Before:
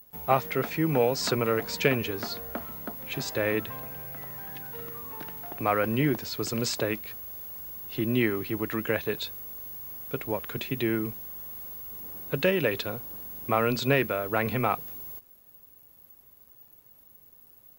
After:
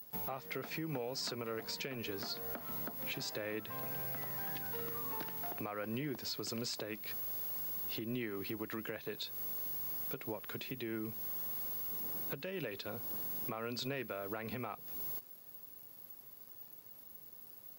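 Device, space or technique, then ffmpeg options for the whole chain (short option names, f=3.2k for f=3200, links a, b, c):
broadcast voice chain: -af "highpass=110,deesser=0.5,acompressor=threshold=-37dB:ratio=5,equalizer=f=4.8k:t=o:w=0.54:g=5.5,alimiter=level_in=7dB:limit=-24dB:level=0:latency=1:release=192,volume=-7dB,volume=1dB"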